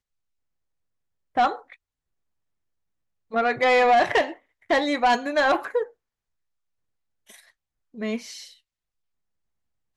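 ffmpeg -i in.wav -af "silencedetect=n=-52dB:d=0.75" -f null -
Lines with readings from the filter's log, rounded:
silence_start: 0.00
silence_end: 1.35 | silence_duration: 1.35
silence_start: 1.75
silence_end: 3.31 | silence_duration: 1.56
silence_start: 5.91
silence_end: 7.27 | silence_duration: 1.36
silence_start: 8.59
silence_end: 9.96 | silence_duration: 1.37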